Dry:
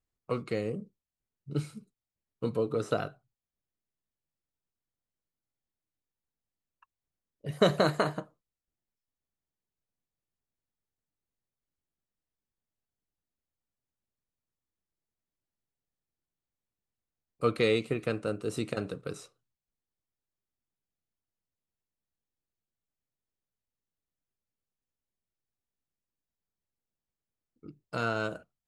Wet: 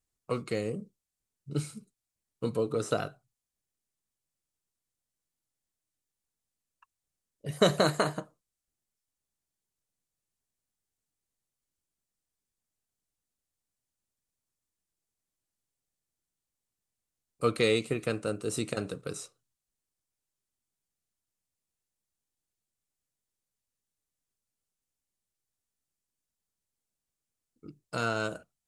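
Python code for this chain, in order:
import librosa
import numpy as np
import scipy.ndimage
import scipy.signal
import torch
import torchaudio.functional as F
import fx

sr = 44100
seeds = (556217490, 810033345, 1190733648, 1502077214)

y = fx.peak_eq(x, sr, hz=8400.0, db=9.5, octaves=1.4)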